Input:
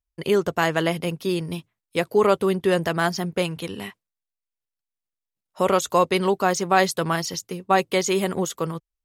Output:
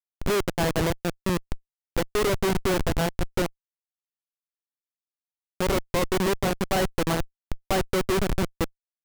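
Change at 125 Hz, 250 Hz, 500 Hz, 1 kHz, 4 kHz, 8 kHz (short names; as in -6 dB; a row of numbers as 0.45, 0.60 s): 0.0, -2.5, -5.0, -7.0, -2.5, -4.0 dB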